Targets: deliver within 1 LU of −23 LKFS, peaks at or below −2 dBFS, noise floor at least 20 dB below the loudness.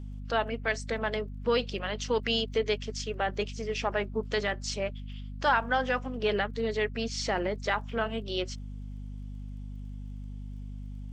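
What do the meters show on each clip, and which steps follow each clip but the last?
crackle rate 18 per second; mains hum 50 Hz; hum harmonics up to 250 Hz; level of the hum −37 dBFS; integrated loudness −30.5 LKFS; sample peak −12.5 dBFS; target loudness −23.0 LKFS
→ click removal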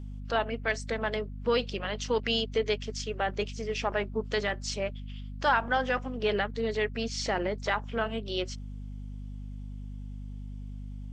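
crackle rate 0.090 per second; mains hum 50 Hz; hum harmonics up to 250 Hz; level of the hum −37 dBFS
→ hum removal 50 Hz, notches 5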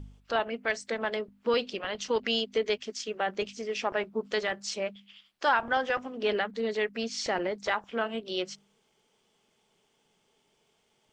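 mains hum none found; integrated loudness −31.0 LKFS; sample peak −12.5 dBFS; target loudness −23.0 LKFS
→ level +8 dB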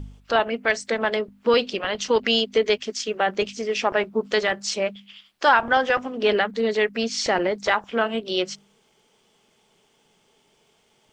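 integrated loudness −23.0 LKFS; sample peak −4.5 dBFS; background noise floor −64 dBFS

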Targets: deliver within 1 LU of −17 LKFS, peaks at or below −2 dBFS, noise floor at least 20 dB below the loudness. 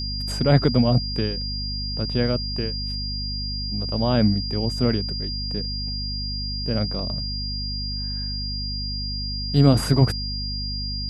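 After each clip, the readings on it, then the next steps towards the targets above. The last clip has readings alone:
mains hum 50 Hz; hum harmonics up to 250 Hz; level of the hum −28 dBFS; interfering tone 4,800 Hz; level of the tone −29 dBFS; integrated loudness −24.0 LKFS; sample peak −3.5 dBFS; target loudness −17.0 LKFS
→ mains-hum notches 50/100/150/200/250 Hz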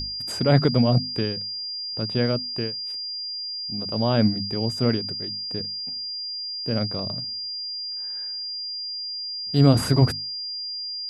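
mains hum none found; interfering tone 4,800 Hz; level of the tone −29 dBFS
→ notch filter 4,800 Hz, Q 30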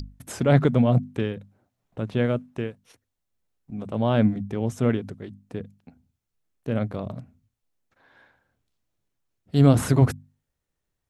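interfering tone none found; integrated loudness −23.5 LKFS; sample peak −4.0 dBFS; target loudness −17.0 LKFS
→ level +6.5 dB
brickwall limiter −2 dBFS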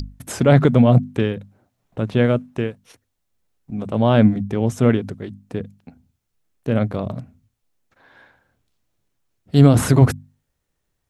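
integrated loudness −17.5 LKFS; sample peak −2.0 dBFS; background noise floor −75 dBFS

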